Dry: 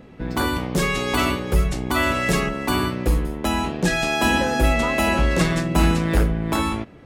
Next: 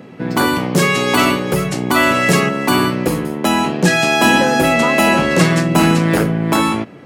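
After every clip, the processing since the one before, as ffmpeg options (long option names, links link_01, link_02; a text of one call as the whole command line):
ffmpeg -i in.wav -af "highpass=frequency=120:width=0.5412,highpass=frequency=120:width=1.3066,bandreject=frequency=3600:width=20,acontrast=40,volume=2.5dB" out.wav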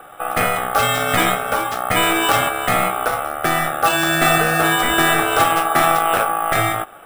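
ffmpeg -i in.wav -af "afftfilt=real='re*(1-between(b*sr/4096,2900,5800))':imag='im*(1-between(b*sr/4096,2900,5800))':win_size=4096:overlap=0.75,aeval=exprs='val(0)*sin(2*PI*990*n/s)':channel_layout=same,acrusher=samples=4:mix=1:aa=0.000001" out.wav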